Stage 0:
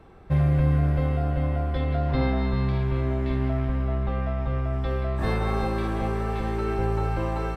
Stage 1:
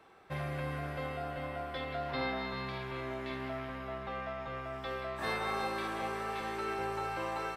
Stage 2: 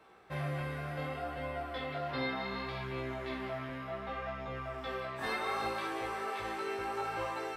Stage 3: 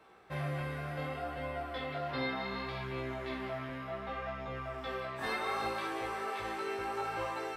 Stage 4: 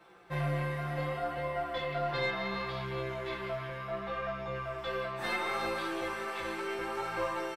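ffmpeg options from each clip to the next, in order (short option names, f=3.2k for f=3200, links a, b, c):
-af "highpass=f=1.2k:p=1"
-af "flanger=delay=15.5:depth=6.9:speed=0.67,bandreject=f=54.76:t=h:w=4,bandreject=f=109.52:t=h:w=4,bandreject=f=164.28:t=h:w=4,bandreject=f=219.04:t=h:w=4,volume=3dB"
-af anull
-af "aecho=1:1:5.8:0.87,aeval=exprs='0.112*(cos(1*acos(clip(val(0)/0.112,-1,1)))-cos(1*PI/2))+0.00316*(cos(6*acos(clip(val(0)/0.112,-1,1)))-cos(6*PI/2))':c=same"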